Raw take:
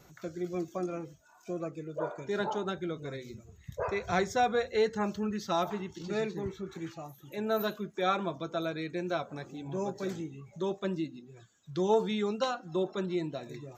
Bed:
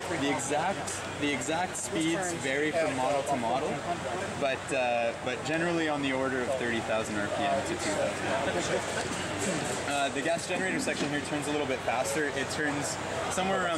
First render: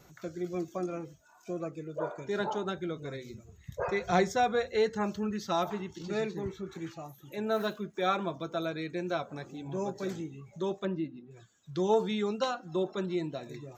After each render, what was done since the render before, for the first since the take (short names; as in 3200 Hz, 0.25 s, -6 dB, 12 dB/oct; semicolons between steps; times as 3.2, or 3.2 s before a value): 3.81–4.32 comb 5.6 ms; 7.47–8.6 median filter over 3 samples; 10.85–11.31 LPF 2300 Hz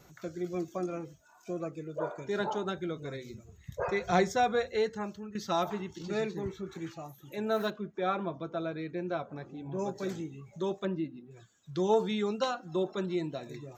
4.61–5.35 fade out, to -14 dB; 7.7–9.79 tape spacing loss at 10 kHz 22 dB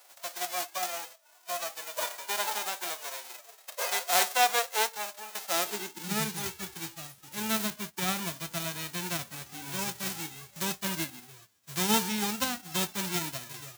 spectral whitening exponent 0.1; high-pass sweep 640 Hz -> 68 Hz, 5.44–6.63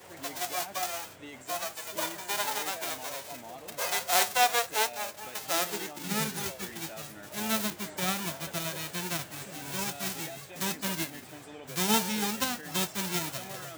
add bed -16 dB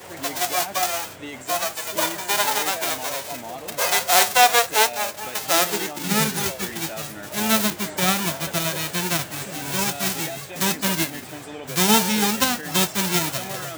gain +10 dB; limiter -3 dBFS, peak gain reduction 2.5 dB